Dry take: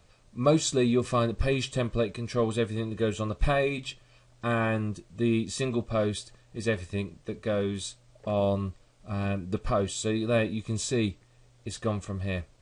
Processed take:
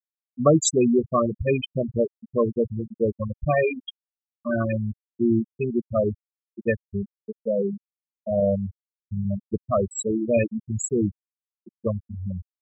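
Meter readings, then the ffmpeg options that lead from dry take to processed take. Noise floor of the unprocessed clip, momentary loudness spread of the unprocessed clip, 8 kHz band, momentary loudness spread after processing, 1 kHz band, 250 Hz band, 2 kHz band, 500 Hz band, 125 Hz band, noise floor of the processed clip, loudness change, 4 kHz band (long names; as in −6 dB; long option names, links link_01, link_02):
−60 dBFS, 11 LU, +5.0 dB, 13 LU, +2.0 dB, +4.5 dB, −1.0 dB, +5.0 dB, +1.5 dB, below −85 dBFS, +4.0 dB, −3.5 dB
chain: -af "highpass=80,highshelf=frequency=4200:gain=9,bandreject=frequency=60:width_type=h:width=6,bandreject=frequency=120:width_type=h:width=6,afftfilt=real='re*gte(hypot(re,im),0.178)':imag='im*gte(hypot(re,im),0.178)':win_size=1024:overlap=0.75,volume=5.5dB"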